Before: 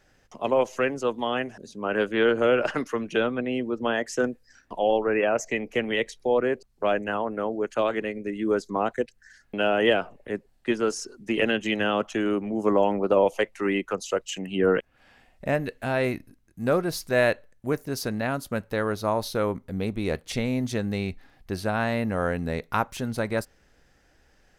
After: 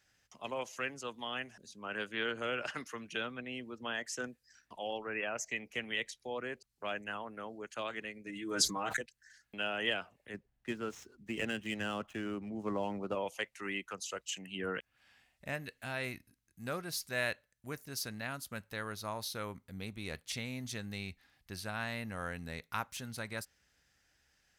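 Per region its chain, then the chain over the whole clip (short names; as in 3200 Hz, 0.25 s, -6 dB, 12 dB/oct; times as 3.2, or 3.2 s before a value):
8.26–9.01 comb 6.4 ms, depth 77% + sustainer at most 23 dB/s
10.34–13.15 median filter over 9 samples + tilt -2 dB/oct
whole clip: HPF 56 Hz; passive tone stack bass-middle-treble 5-5-5; gain +2 dB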